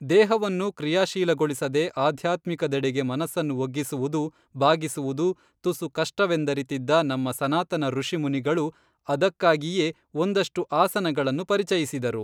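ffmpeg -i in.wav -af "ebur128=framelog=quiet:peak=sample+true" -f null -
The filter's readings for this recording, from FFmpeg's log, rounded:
Integrated loudness:
  I:         -25.0 LUFS
  Threshold: -35.1 LUFS
Loudness range:
  LRA:         1.9 LU
  Threshold: -45.4 LUFS
  LRA low:   -26.3 LUFS
  LRA high:  -24.4 LUFS
Sample peak:
  Peak:       -6.5 dBFS
True peak:
  Peak:       -6.5 dBFS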